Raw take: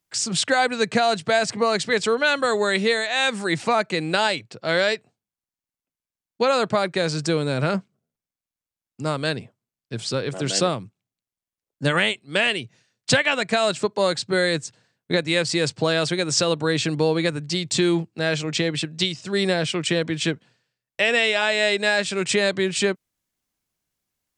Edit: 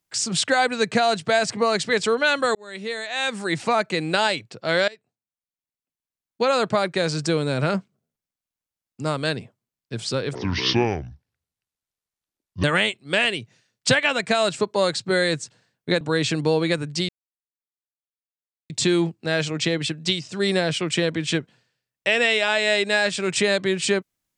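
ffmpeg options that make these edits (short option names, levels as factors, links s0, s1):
-filter_complex "[0:a]asplit=7[s0][s1][s2][s3][s4][s5][s6];[s0]atrim=end=2.55,asetpts=PTS-STARTPTS,afade=t=out:st=2.546:d=0.004:c=hsin[s7];[s1]atrim=start=2.55:end=4.88,asetpts=PTS-STARTPTS,afade=t=in:d=1.49:c=qsin,afade=t=out:st=2.326:d=0.004:c=hsin:silence=0.0794328[s8];[s2]atrim=start=4.88:end=10.354,asetpts=PTS-STARTPTS,afade=t=in:d=1.74:silence=0.0794328[s9];[s3]atrim=start=10.35:end=11.86,asetpts=PTS-STARTPTS,asetrate=29106,aresample=44100,atrim=end_sample=100895,asetpts=PTS-STARTPTS[s10];[s4]atrim=start=11.856:end=15.232[s11];[s5]atrim=start=16.548:end=17.63,asetpts=PTS-STARTPTS,afade=t=out:st=1.078:d=0.004:c=hsin,apad=pad_dur=1.61[s12];[s6]atrim=start=17.63,asetpts=PTS-STARTPTS,afade=t=in:d=0.004:c=hsin[s13];[s7][s8][s9]concat=n=3:v=0:a=1[s14];[s14][s10]acrossfade=d=0.004:c1=hsin:c2=hsin[s15];[s15][s11]acrossfade=d=0.004:c1=hsin:c2=hsin[s16];[s12][s13]concat=n=2:v=0:a=1[s17];[s16][s17]acrossfade=d=0.004:c1=hsin:c2=hsin"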